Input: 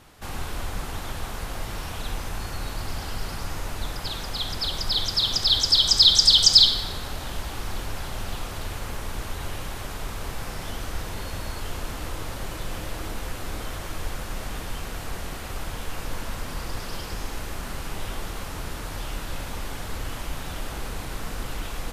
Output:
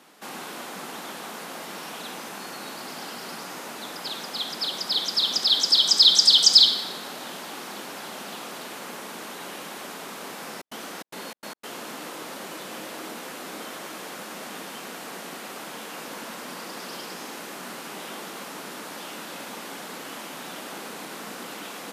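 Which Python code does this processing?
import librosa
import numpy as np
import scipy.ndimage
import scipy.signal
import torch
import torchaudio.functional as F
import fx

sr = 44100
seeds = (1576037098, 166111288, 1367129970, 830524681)

y = scipy.signal.sosfilt(scipy.signal.butter(6, 190.0, 'highpass', fs=sr, output='sos'), x)
y = fx.step_gate(y, sr, bpm=147, pattern='.xx.x.xxx', floor_db=-60.0, edge_ms=4.5, at=(10.53, 11.8), fade=0.02)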